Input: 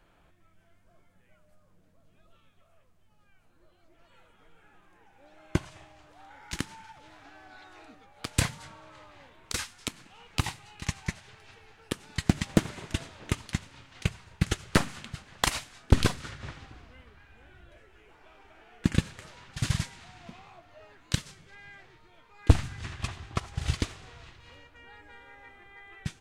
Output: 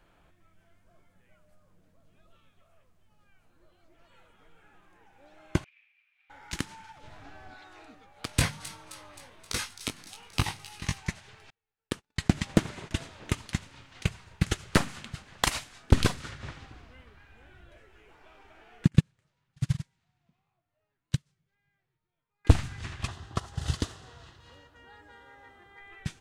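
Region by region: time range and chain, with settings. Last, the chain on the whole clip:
5.64–6.30 s: median filter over 9 samples + ladder high-pass 2.3 kHz, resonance 85% + distance through air 200 m
7.03–7.54 s: bass shelf 390 Hz +11 dB + band-stop 320 Hz, Q 5.3
8.27–10.98 s: band-stop 7.3 kHz, Q 8.4 + doubling 20 ms -5 dB + feedback echo behind a high-pass 263 ms, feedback 58%, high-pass 3.6 kHz, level -11 dB
11.50–12.96 s: treble shelf 11 kHz -6.5 dB + gate -48 dBFS, range -37 dB
18.85–22.45 s: peaking EQ 140 Hz +12 dB 0.95 oct + upward expansion 2.5:1, over -30 dBFS
23.07–25.78 s: high-pass 56 Hz + peaking EQ 2.3 kHz -14 dB 0.27 oct
whole clip: none

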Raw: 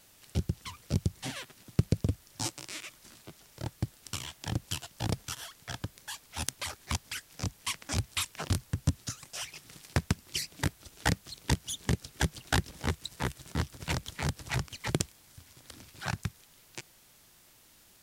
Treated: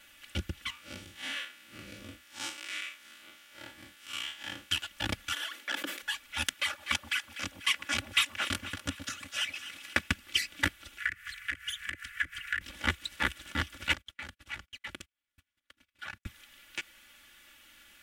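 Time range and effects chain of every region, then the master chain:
0.70–4.71 s: spectral blur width 97 ms + high-pass 340 Hz 6 dB/octave
5.33–6.02 s: high-pass 260 Hz 24 dB/octave + peaking EQ 370 Hz +7.5 dB 1.6 oct + decay stretcher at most 84 dB/s
6.53–10.08 s: high-pass 210 Hz 6 dB/octave + echo whose repeats swap between lows and highs 123 ms, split 890 Hz, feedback 68%, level -9 dB
10.98–12.61 s: FFT filter 150 Hz 0 dB, 300 Hz -29 dB, 740 Hz -26 dB, 1.2 kHz +3 dB, 1.8 kHz +14 dB, 3.8 kHz -6 dB, 8.4 kHz 0 dB + compression 10:1, threshold -35 dBFS + transformer saturation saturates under 1.2 kHz
13.93–16.26 s: compression 2:1, threshold -53 dBFS + gate -53 dBFS, range -34 dB
whole clip: high-order bell 2.1 kHz +12 dB; comb 3.5 ms, depth 90%; trim -5 dB

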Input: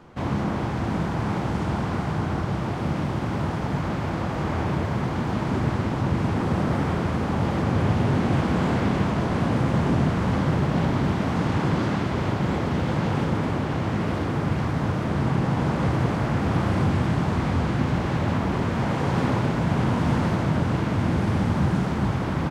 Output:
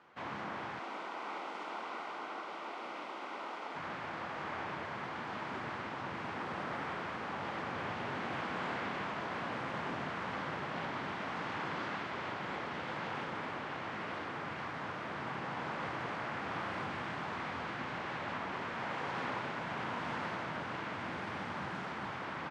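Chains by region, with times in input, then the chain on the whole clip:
0.79–3.76 s: high-pass 270 Hz 24 dB/octave + band-stop 1.7 kHz, Q 5.4
whole clip: low-pass 1.9 kHz 12 dB/octave; differentiator; trim +8.5 dB

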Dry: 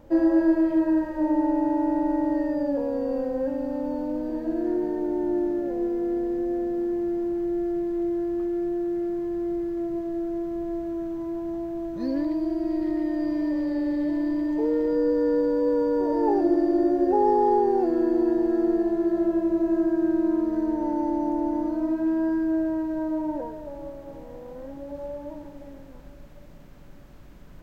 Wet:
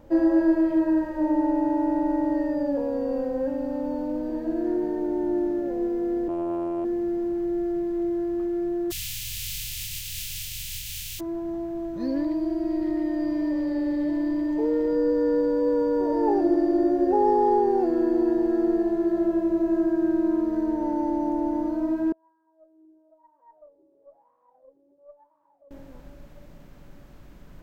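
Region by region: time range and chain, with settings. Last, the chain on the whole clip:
6.28–6.85 s: robot voice 85.6 Hz + loudspeaker Doppler distortion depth 0.98 ms
8.90–11.19 s: spectral contrast reduction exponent 0.37 + elliptic band-stop 110–2700 Hz, stop band 80 dB
22.12–25.71 s: compression, threshold -36 dBFS + wah-wah 1 Hz 370–1100 Hz, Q 14 + valve stage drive 31 dB, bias 0.55
whole clip: none

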